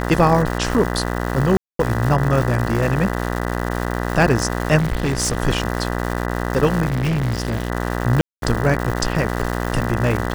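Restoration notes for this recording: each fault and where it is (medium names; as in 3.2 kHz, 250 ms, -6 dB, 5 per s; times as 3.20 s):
buzz 60 Hz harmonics 33 -23 dBFS
crackle 340 per s -23 dBFS
1.57–1.79 s: dropout 223 ms
4.78–5.37 s: clipped -15.5 dBFS
6.88–7.70 s: clipped -16.5 dBFS
8.21–8.42 s: dropout 212 ms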